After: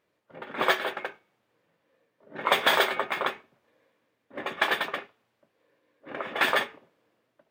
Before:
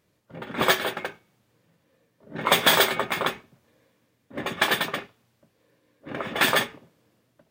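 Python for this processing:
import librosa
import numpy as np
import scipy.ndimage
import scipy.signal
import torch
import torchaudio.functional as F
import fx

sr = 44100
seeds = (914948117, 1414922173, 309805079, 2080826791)

y = fx.bass_treble(x, sr, bass_db=-14, treble_db=-11)
y = y * librosa.db_to_amplitude(-1.5)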